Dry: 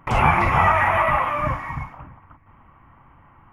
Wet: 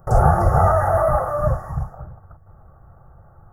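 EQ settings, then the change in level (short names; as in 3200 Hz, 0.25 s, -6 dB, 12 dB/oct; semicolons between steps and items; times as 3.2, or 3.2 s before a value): Butterworth band-stop 2400 Hz, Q 0.82; bell 2600 Hz -13.5 dB 1.3 oct; fixed phaser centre 1000 Hz, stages 6; +8.5 dB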